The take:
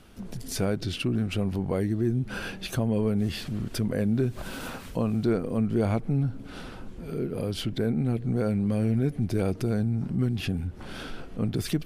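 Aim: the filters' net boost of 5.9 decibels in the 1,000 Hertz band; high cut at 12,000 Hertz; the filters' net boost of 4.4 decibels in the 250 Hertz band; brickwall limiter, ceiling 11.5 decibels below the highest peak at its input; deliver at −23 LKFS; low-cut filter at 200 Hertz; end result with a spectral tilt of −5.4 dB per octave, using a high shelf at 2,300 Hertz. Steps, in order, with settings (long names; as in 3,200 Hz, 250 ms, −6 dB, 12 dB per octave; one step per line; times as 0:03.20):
high-pass filter 200 Hz
low-pass filter 12,000 Hz
parametric band 250 Hz +7.5 dB
parametric band 1,000 Hz +7 dB
high-shelf EQ 2,300 Hz +3.5 dB
level +7 dB
brickwall limiter −13.5 dBFS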